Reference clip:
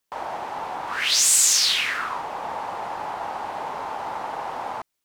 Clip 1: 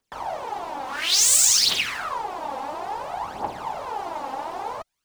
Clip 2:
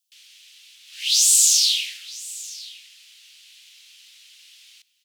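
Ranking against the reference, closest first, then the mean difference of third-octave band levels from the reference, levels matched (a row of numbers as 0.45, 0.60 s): 1, 2; 2.5, 19.0 dB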